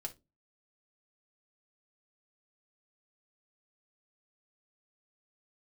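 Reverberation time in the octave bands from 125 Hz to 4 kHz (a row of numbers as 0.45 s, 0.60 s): 0.40 s, 0.40 s, 0.30 s, 0.20 s, 0.20 s, 0.20 s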